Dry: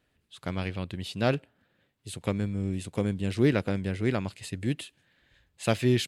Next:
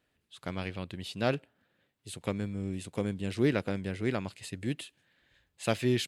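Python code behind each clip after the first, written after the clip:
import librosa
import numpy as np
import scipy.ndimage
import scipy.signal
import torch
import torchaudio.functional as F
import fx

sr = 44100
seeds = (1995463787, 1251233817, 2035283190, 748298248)

y = fx.low_shelf(x, sr, hz=130.0, db=-6.0)
y = y * 10.0 ** (-2.5 / 20.0)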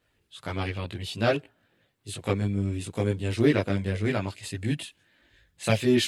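y = fx.chorus_voices(x, sr, voices=4, hz=0.6, base_ms=19, depth_ms=1.7, mix_pct=55)
y = y * 10.0 ** (8.5 / 20.0)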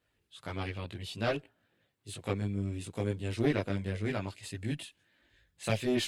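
y = fx.diode_clip(x, sr, knee_db=-19.0)
y = y * 10.0 ** (-6.0 / 20.0)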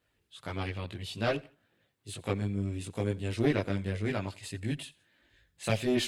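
y = fx.echo_feedback(x, sr, ms=85, feedback_pct=34, wet_db=-23.0)
y = y * 10.0 ** (1.5 / 20.0)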